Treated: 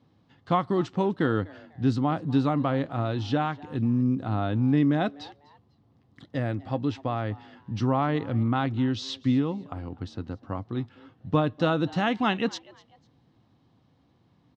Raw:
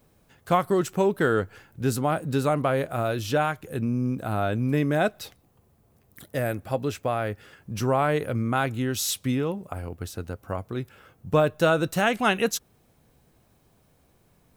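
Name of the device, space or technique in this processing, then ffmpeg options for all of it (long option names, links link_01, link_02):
frequency-shifting delay pedal into a guitar cabinet: -filter_complex "[0:a]asplit=3[link_01][link_02][link_03];[link_02]adelay=248,afreqshift=140,volume=-22.5dB[link_04];[link_03]adelay=496,afreqshift=280,volume=-32.7dB[link_05];[link_01][link_04][link_05]amix=inputs=3:normalize=0,highpass=98,equalizer=frequency=110:width_type=q:width=4:gain=5,equalizer=frequency=280:width_type=q:width=4:gain=6,equalizer=frequency=420:width_type=q:width=4:gain=-7,equalizer=frequency=610:width_type=q:width=4:gain=-7,equalizer=frequency=1500:width_type=q:width=4:gain=-7,equalizer=frequency=2400:width_type=q:width=4:gain=-8,lowpass=frequency=4400:width=0.5412,lowpass=frequency=4400:width=1.3066,asettb=1/sr,asplit=3[link_06][link_07][link_08];[link_06]atrim=end=7.984[link_09];[link_07]atrim=start=7.98:end=9.23,asetpts=PTS-STARTPTS,afade=type=in:duration=0.004:curve=qsin,afade=type=out:start_time=1.246:duration=0.004:curve=qsin,lowpass=6900[link_10];[link_08]atrim=start=9.226[link_11];[link_09][link_10]acrossfade=duration=0.004:curve1=hsin:curve2=qsin[link_12];[link_12][link_11]acrossfade=duration=0.004:curve1=qsin:curve2=hsin"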